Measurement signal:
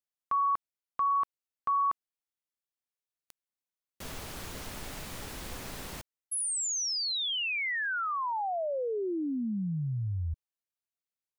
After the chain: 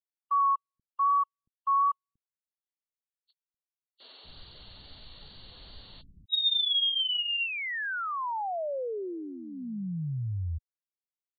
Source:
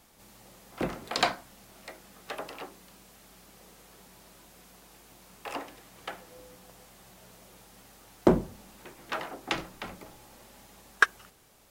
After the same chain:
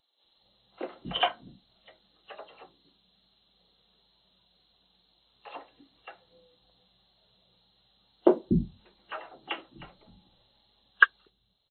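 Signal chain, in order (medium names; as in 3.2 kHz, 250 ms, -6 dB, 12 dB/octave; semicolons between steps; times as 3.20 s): knee-point frequency compression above 2.7 kHz 4:1; in parallel at -12 dB: short-mantissa float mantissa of 2-bit; on the sum: wow and flutter 21 cents; bands offset in time highs, lows 240 ms, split 280 Hz; spectral contrast expander 1.5:1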